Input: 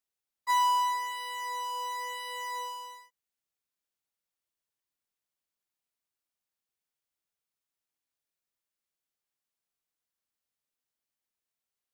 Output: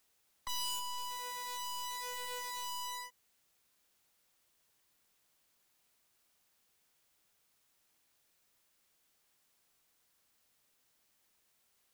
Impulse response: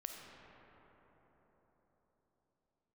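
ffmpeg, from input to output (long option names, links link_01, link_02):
-filter_complex "[0:a]aeval=exprs='0.141*sin(PI/2*3.16*val(0)/0.141)':channel_layout=same,aeval=exprs='(tanh(70.8*val(0)+0.3)-tanh(0.3))/70.8':channel_layout=same,acrossover=split=480|3000[link_01][link_02][link_03];[link_02]acompressor=threshold=-46dB:ratio=6[link_04];[link_01][link_04][link_03]amix=inputs=3:normalize=0,volume=2dB"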